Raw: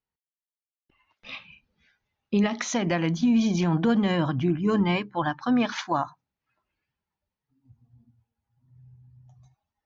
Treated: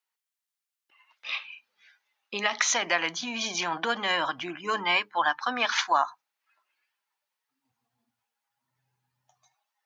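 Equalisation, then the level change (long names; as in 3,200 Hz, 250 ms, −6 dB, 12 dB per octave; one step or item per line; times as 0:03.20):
high-pass filter 980 Hz 12 dB per octave
+7.0 dB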